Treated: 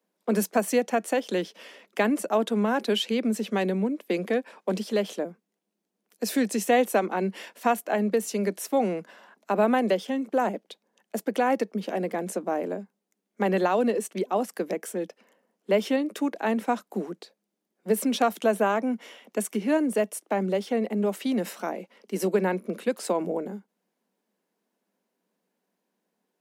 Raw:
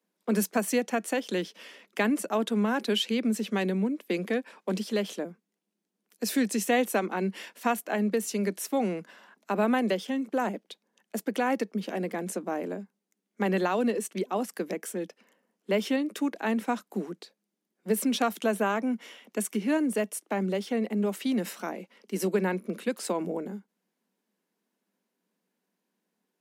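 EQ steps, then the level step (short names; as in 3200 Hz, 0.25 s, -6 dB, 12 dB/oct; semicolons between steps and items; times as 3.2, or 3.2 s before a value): bell 630 Hz +5.5 dB 1.4 oct; 0.0 dB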